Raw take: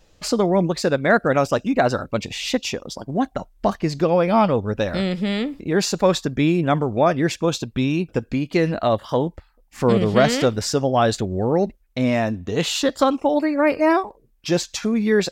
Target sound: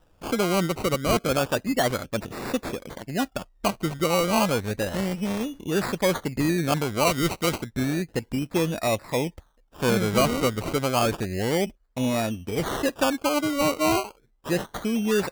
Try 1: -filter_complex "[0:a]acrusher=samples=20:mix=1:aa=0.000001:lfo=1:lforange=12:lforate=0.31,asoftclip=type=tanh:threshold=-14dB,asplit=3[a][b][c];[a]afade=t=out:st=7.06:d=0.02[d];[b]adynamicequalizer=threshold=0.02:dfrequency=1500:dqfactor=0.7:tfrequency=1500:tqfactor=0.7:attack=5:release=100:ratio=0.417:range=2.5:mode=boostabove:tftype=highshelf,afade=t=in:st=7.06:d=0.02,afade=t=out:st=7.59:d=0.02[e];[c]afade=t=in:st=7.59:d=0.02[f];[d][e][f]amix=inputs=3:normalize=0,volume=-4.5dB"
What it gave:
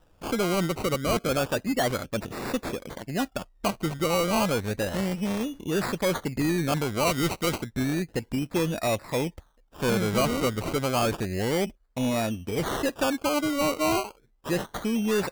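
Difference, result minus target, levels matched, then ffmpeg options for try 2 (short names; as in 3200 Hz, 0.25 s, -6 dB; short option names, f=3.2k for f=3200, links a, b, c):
soft clip: distortion +11 dB
-filter_complex "[0:a]acrusher=samples=20:mix=1:aa=0.000001:lfo=1:lforange=12:lforate=0.31,asoftclip=type=tanh:threshold=-6dB,asplit=3[a][b][c];[a]afade=t=out:st=7.06:d=0.02[d];[b]adynamicequalizer=threshold=0.02:dfrequency=1500:dqfactor=0.7:tfrequency=1500:tqfactor=0.7:attack=5:release=100:ratio=0.417:range=2.5:mode=boostabove:tftype=highshelf,afade=t=in:st=7.06:d=0.02,afade=t=out:st=7.59:d=0.02[e];[c]afade=t=in:st=7.59:d=0.02[f];[d][e][f]amix=inputs=3:normalize=0,volume=-4.5dB"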